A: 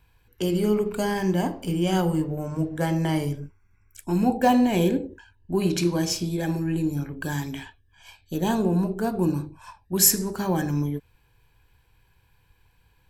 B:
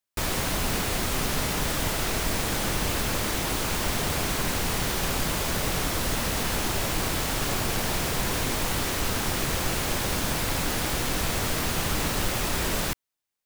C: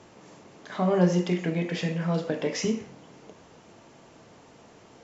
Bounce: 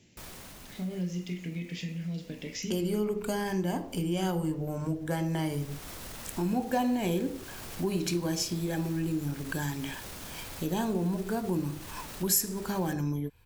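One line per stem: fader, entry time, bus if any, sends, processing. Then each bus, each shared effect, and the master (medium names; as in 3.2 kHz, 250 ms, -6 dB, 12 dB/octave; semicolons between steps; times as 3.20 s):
+2.0 dB, 2.30 s, no send, none
-9.5 dB, 0.00 s, no send, peak limiter -24.5 dBFS, peak gain reduction 11.5 dB; auto duck -18 dB, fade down 1.70 s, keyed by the third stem
-4.5 dB, 0.00 s, no send, FFT filter 220 Hz 0 dB, 1.2 kHz -25 dB, 2.1 kHz -1 dB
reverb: none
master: treble shelf 6.5 kHz +4 dB; compression 2:1, threshold -34 dBFS, peak gain reduction 14 dB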